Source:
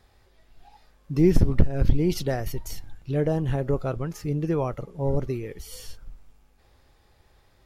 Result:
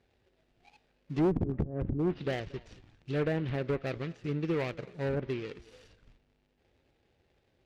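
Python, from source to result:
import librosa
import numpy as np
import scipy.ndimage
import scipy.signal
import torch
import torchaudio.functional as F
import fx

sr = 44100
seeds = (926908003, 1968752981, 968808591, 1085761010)

y = scipy.signal.medfilt(x, 41)
y = fx.env_lowpass_down(y, sr, base_hz=550.0, full_db=-14.0)
y = fx.high_shelf(y, sr, hz=6200.0, db=-6.0)
y = y + 10.0 ** (-23.5 / 20.0) * np.pad(y, (int(229 * sr / 1000.0), 0))[:len(y)]
y = fx.env_lowpass_down(y, sr, base_hz=910.0, full_db=-11.5)
y = fx.weighting(y, sr, curve='D')
y = fx.clip_asym(y, sr, top_db=-22.0, bottom_db=-16.0)
y = F.gain(torch.from_numpy(y), -3.0).numpy()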